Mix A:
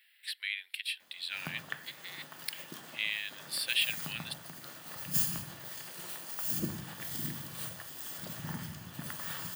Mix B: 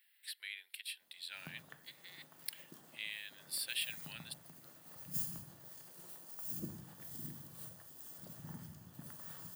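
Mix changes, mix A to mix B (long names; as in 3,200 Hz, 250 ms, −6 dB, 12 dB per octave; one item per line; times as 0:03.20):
background −8.5 dB
master: add parametric band 2,500 Hz −10.5 dB 2.3 octaves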